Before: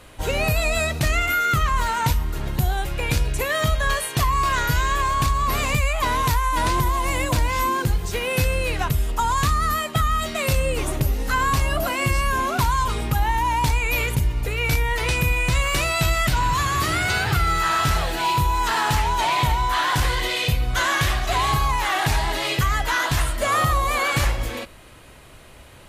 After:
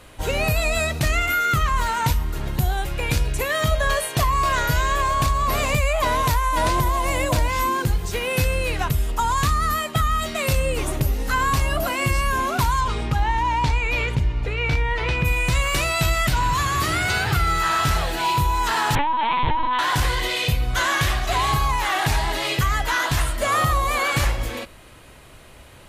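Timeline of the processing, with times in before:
3.71–7.48 bell 620 Hz +7.5 dB 0.41 oct
12.8–15.24 LPF 6500 Hz -> 3100 Hz
18.95–19.79 LPC vocoder at 8 kHz pitch kept

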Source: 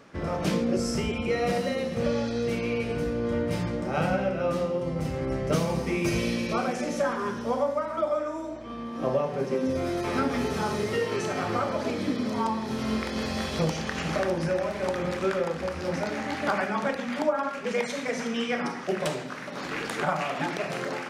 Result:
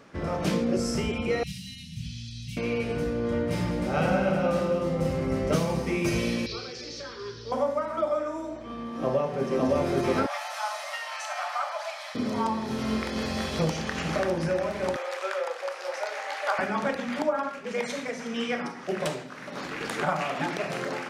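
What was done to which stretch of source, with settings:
1.43–2.57 Chebyshev band-stop 150–3000 Hz, order 3
3.5–5.56 tapped delay 50/102/203/311 ms -7.5/-10/-12/-7 dB
6.46–7.52 EQ curve 130 Hz 0 dB, 200 Hz -23 dB, 430 Hz -2 dB, 630 Hz -22 dB, 1100 Hz -14 dB, 2900 Hz -4 dB, 4600 Hz +11 dB, 7500 Hz -13 dB, 12000 Hz -29 dB
8.85–9.56 echo throw 0.56 s, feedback 55%, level 0 dB
10.26–12.15 steep high-pass 610 Hz 96 dB/oct
14.96–16.59 steep high-pass 500 Hz
17.22–19.81 tremolo triangle 1.8 Hz, depth 50%

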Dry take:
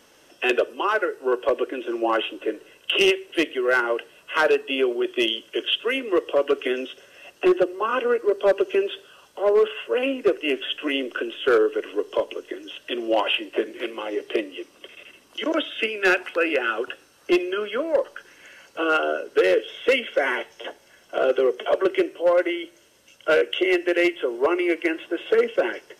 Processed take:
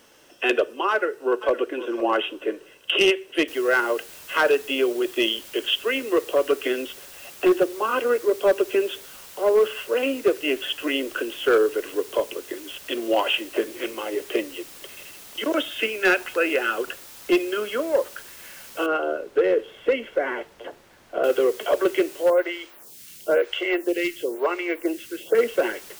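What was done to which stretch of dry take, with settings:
0.9–1.62 echo throw 0.51 s, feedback 15%, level -14 dB
3.48 noise floor step -66 dB -44 dB
18.86–21.24 LPF 1000 Hz 6 dB/oct
22.3–25.35 photocell phaser 1 Hz

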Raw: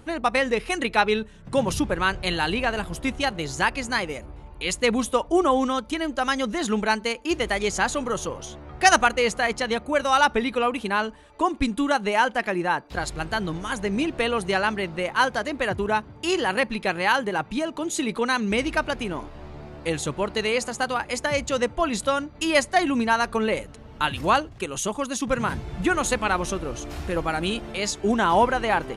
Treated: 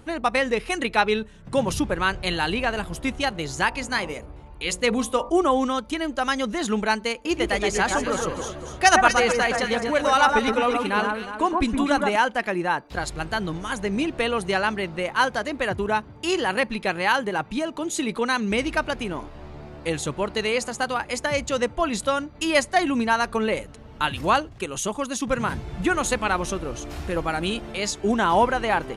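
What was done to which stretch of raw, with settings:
3.67–5.3 de-hum 45.57 Hz, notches 26
7.13–12.16 echo with dull and thin repeats by turns 0.12 s, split 1800 Hz, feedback 63%, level -3 dB

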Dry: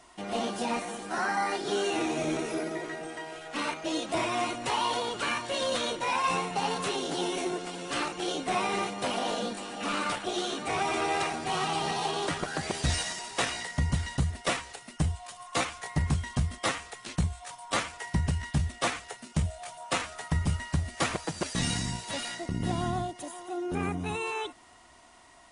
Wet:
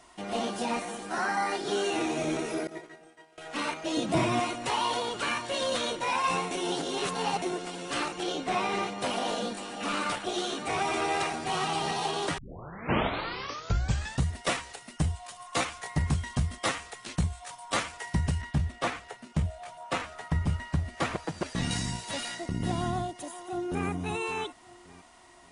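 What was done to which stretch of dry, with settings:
2.67–3.38 expander -29 dBFS
3.97–4.4 bell 150 Hz +14 dB 1.9 oct
6.51–7.42 reverse
8.23–9.01 Bessel low-pass 6500 Hz
12.38 tape start 1.87 s
18.41–21.71 high shelf 4200 Hz -11.5 dB
22.95–23.87 echo throw 0.57 s, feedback 35%, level -13 dB

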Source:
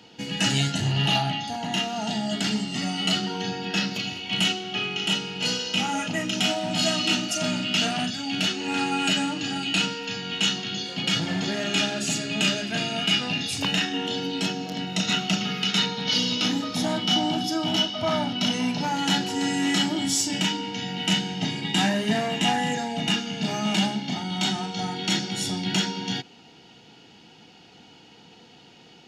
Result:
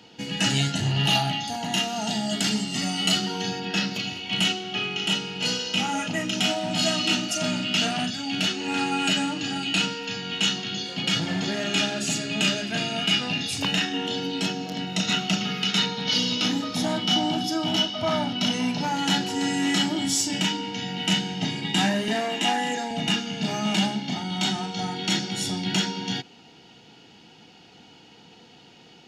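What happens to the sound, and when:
1.05–3.6 high shelf 6900 Hz +11 dB
22.08–22.91 HPF 230 Hz 24 dB/oct

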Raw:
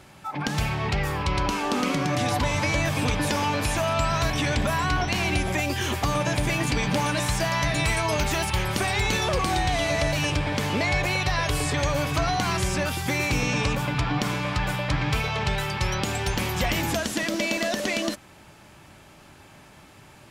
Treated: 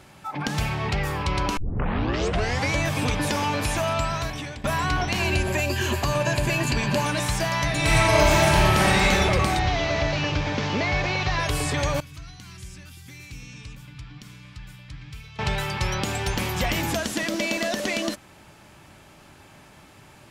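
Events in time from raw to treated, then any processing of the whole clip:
1.57 tape start 1.15 s
3.9–4.64 fade out, to -18 dB
5.19–7.05 ripple EQ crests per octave 1.4, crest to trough 8 dB
7.76–9.04 reverb throw, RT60 2.9 s, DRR -5.5 dB
9.59–11.4 delta modulation 32 kbps, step -31 dBFS
12–15.39 passive tone stack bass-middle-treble 6-0-2

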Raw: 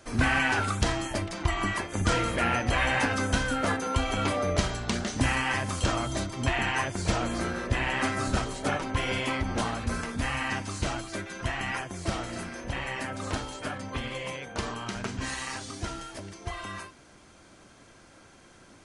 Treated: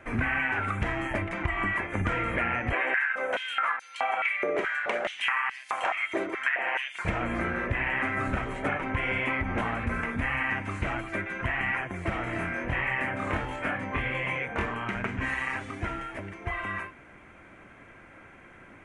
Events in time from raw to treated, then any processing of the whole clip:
2.73–7.05 stepped high-pass 4.7 Hz 390–4500 Hz
12.24–14.66 doubler 24 ms -2 dB
whole clip: resonant high shelf 3200 Hz -13.5 dB, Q 3; compressor, threshold -27 dBFS; gain +2 dB

